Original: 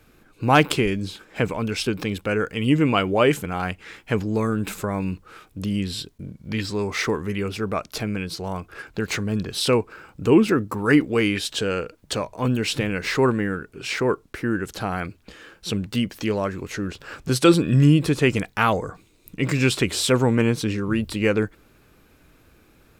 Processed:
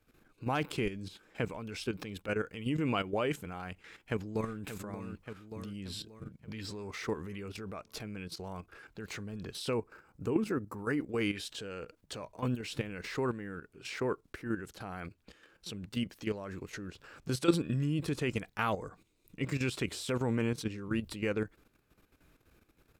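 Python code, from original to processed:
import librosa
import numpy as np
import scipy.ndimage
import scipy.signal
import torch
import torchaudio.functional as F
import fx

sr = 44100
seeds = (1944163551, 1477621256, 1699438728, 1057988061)

y = fx.echo_throw(x, sr, start_s=3.83, length_s=0.74, ms=580, feedback_pct=50, wet_db=-5.5)
y = fx.peak_eq(y, sr, hz=3200.0, db=-7.0, octaves=1.1, at=(9.73, 11.21))
y = fx.level_steps(y, sr, step_db=11)
y = y * librosa.db_to_amplitude(-8.5)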